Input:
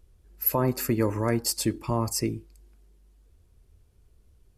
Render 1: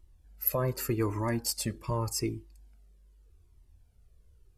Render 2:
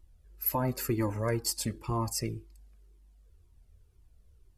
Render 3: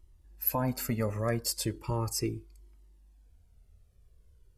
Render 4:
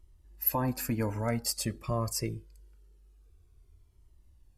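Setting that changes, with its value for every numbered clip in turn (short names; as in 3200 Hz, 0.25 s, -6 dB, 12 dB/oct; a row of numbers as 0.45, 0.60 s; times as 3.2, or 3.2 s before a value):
cascading flanger, rate: 0.84, 2, 0.37, 0.25 Hz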